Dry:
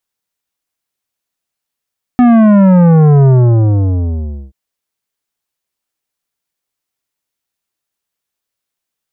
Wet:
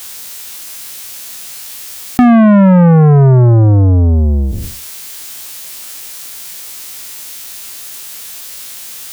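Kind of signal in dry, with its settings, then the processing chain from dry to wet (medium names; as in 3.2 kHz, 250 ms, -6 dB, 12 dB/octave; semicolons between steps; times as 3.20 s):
sub drop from 250 Hz, over 2.33 s, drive 12 dB, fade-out 1.25 s, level -5 dB
spectral sustain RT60 0.39 s; treble shelf 2.1 kHz +10.5 dB; level flattener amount 70%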